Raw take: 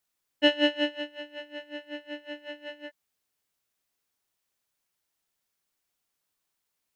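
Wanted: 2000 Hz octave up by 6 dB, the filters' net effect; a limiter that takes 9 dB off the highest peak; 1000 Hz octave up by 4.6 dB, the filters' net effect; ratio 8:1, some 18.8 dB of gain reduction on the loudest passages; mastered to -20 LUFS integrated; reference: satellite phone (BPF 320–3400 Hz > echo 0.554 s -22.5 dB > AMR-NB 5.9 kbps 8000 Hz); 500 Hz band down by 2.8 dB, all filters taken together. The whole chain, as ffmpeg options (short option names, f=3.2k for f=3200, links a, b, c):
-af "equalizer=f=500:t=o:g=-5.5,equalizer=f=1k:t=o:g=6,equalizer=f=2k:t=o:g=6,acompressor=threshold=-34dB:ratio=8,alimiter=level_in=5.5dB:limit=-24dB:level=0:latency=1,volume=-5.5dB,highpass=320,lowpass=3.4k,aecho=1:1:554:0.075,volume=23.5dB" -ar 8000 -c:a libopencore_amrnb -b:a 5900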